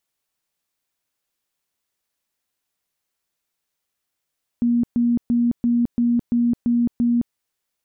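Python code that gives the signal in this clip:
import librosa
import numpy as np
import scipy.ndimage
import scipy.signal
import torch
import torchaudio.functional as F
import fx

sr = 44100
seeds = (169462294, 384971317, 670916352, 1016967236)

y = fx.tone_burst(sr, hz=238.0, cycles=51, every_s=0.34, bursts=8, level_db=-15.0)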